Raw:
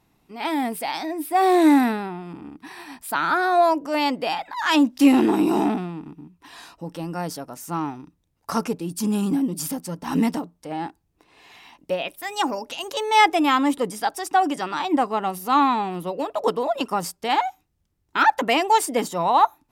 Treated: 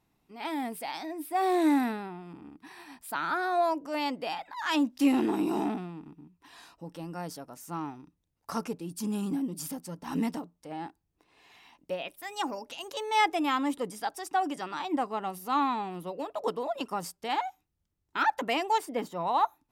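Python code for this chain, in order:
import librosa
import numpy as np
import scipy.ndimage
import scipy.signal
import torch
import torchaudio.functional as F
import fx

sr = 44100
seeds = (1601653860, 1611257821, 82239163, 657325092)

y = fx.peak_eq(x, sr, hz=8300.0, db=-10.5, octaves=1.8, at=(18.78, 19.27))
y = y * librosa.db_to_amplitude(-9.0)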